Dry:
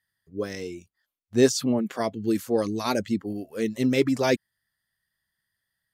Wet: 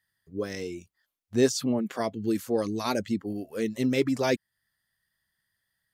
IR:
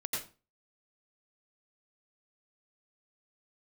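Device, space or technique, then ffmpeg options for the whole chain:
parallel compression: -filter_complex "[0:a]asplit=2[a][b];[b]acompressor=threshold=-34dB:ratio=6,volume=0dB[c];[a][c]amix=inputs=2:normalize=0,volume=-4.5dB"

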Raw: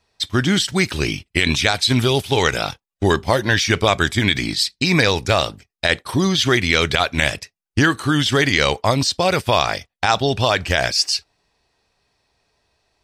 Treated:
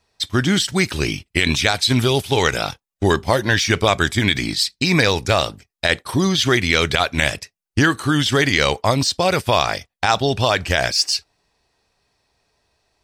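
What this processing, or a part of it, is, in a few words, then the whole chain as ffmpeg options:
exciter from parts: -filter_complex "[0:a]asplit=2[a][b];[b]highpass=f=3.3k:p=1,asoftclip=type=tanh:threshold=-23dB,highpass=3.3k,volume=-10dB[c];[a][c]amix=inputs=2:normalize=0"

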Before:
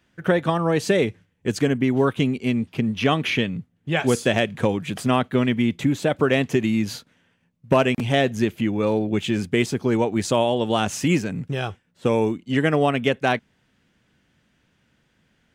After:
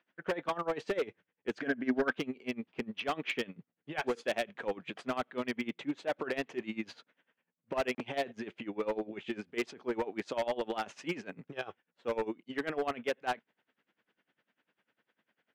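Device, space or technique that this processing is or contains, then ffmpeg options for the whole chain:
helicopter radio: -filter_complex "[0:a]highpass=380,lowpass=2.8k,aeval=exprs='val(0)*pow(10,-21*(0.5-0.5*cos(2*PI*10*n/s))/20)':c=same,asoftclip=type=hard:threshold=-23dB,asettb=1/sr,asplit=3[a][b][c];[a]atrim=end=1.594[d];[b]atrim=start=1.59:end=2.18,asetpts=PTS-STARTPTS,afade=t=in:d=0.004:c=qsin,afade=t=out:st=0.586:d=0.004:c=qsin,equalizer=f=250:t=o:w=0.33:g=8,equalizer=f=630:t=o:w=0.33:g=8,equalizer=f=1k:t=o:w=0.33:g=-3,equalizer=f=1.6k:t=o:w=0.33:g=11,equalizer=f=5k:t=o:w=0.33:g=7,equalizer=f=8k:t=o:w=0.33:g=-6[e];[c]atrim=start=2.176[f];[d][e]acrossfade=d=0.004:c1=hsin:c2=qsin[g];[g][f]acrossfade=d=0.004:c1=qsin:c2=hsin,volume=-3dB"

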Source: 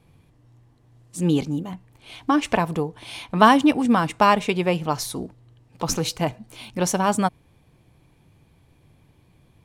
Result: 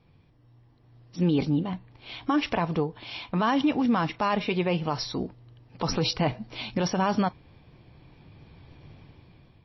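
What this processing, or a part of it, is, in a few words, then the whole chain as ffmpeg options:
low-bitrate web radio: -af "dynaudnorm=f=330:g=7:m=17dB,alimiter=limit=-12dB:level=0:latency=1:release=38,volume=-3.5dB" -ar 16000 -c:a libmp3lame -b:a 24k

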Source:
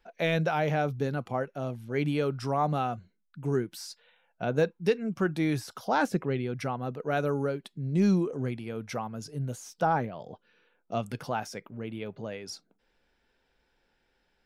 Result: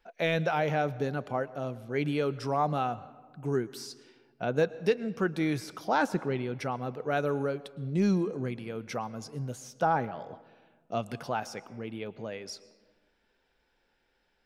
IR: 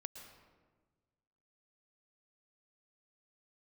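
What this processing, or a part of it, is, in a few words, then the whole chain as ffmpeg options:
filtered reverb send: -filter_complex "[0:a]asplit=2[a][b];[b]highpass=210,lowpass=8.5k[c];[1:a]atrim=start_sample=2205[d];[c][d]afir=irnorm=-1:irlink=0,volume=-5dB[e];[a][e]amix=inputs=2:normalize=0,volume=-2.5dB"

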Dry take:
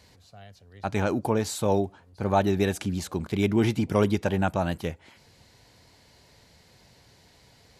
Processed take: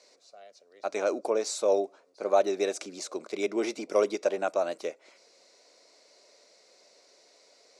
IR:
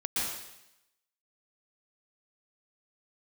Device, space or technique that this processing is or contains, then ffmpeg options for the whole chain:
phone speaker on a table: -af "highpass=f=370:w=0.5412,highpass=f=370:w=1.3066,equalizer=f=590:t=q:w=4:g=6,equalizer=f=870:t=q:w=4:g=-10,equalizer=f=1.7k:t=q:w=4:g=-9,equalizer=f=3.1k:t=q:w=4:g=-10,equalizer=f=5.7k:t=q:w=4:g=4,lowpass=f=8.6k:w=0.5412,lowpass=f=8.6k:w=1.3066"

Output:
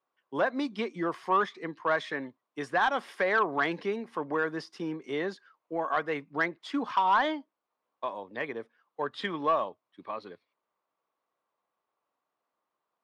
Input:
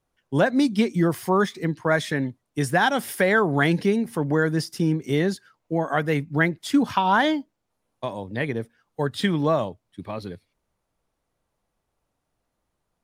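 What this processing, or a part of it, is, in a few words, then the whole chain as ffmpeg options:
intercom: -af "highpass=380,lowpass=3.6k,equalizer=f=1.1k:t=o:w=0.37:g=9,asoftclip=type=tanh:threshold=-10dB,volume=-5.5dB"

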